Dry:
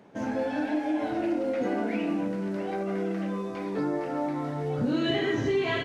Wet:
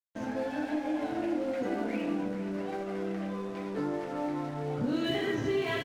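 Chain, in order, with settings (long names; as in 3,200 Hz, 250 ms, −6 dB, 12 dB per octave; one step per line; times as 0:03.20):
slap from a distant wall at 79 metres, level −12 dB
dead-zone distortion −44 dBFS
level −3 dB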